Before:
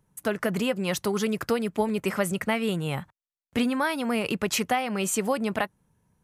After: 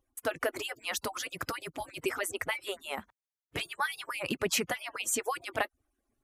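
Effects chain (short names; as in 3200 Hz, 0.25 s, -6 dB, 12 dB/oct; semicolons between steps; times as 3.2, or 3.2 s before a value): median-filter separation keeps percussive; gain -2 dB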